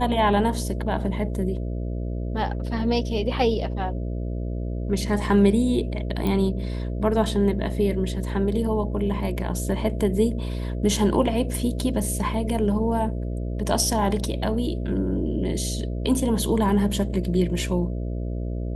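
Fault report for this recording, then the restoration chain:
buzz 60 Hz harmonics 11 -28 dBFS
6.27 pop -14 dBFS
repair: de-click; de-hum 60 Hz, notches 11

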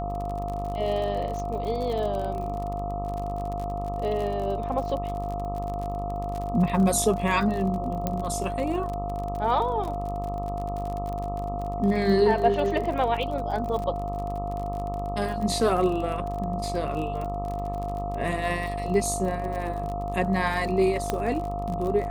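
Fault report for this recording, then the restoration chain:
buzz 50 Hz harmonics 26 -33 dBFS
crackle 42/s -31 dBFS
tone 700 Hz -31 dBFS
8.07 pop -13 dBFS
21.1 pop -11 dBFS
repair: de-click; de-hum 50 Hz, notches 26; notch 700 Hz, Q 30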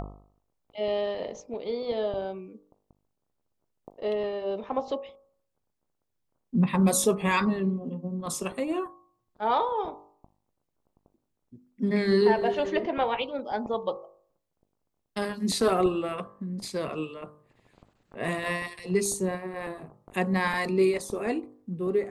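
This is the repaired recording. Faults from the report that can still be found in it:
none

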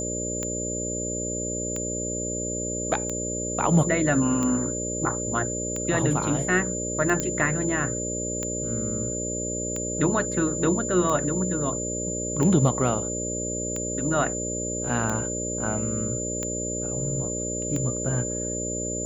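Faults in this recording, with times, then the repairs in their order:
buzz 60 Hz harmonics 10 -32 dBFS
tick 45 rpm -16 dBFS
tone 7100 Hz -30 dBFS
7.2 pop -11 dBFS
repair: de-click; de-hum 60 Hz, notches 10; notch 7100 Hz, Q 30

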